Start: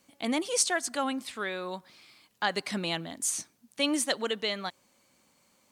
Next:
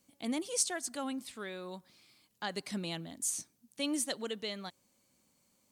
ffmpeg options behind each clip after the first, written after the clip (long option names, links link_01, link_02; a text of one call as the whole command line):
ffmpeg -i in.wav -af "equalizer=frequency=1400:width=0.31:gain=-9,volume=-2dB" out.wav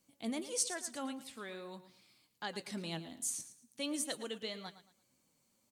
ffmpeg -i in.wav -af "flanger=delay=5.9:depth=3.4:regen=66:speed=1.7:shape=triangular,aecho=1:1:112|224|336:0.211|0.0613|0.0178,volume=1dB" out.wav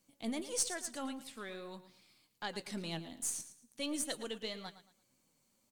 ffmpeg -i in.wav -af "aeval=exprs='if(lt(val(0),0),0.708*val(0),val(0))':channel_layout=same,volume=1.5dB" out.wav